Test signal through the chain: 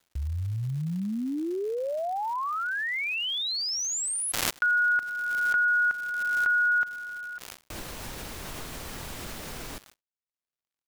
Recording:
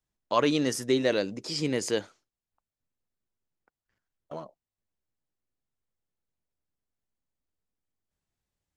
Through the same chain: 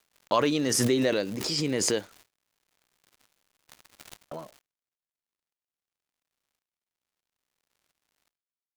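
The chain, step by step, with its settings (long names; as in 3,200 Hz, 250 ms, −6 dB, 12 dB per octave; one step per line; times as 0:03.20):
surface crackle 280 per second −38 dBFS
noise gate −52 dBFS, range −55 dB
background raised ahead of every attack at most 23 dB per second
level −1 dB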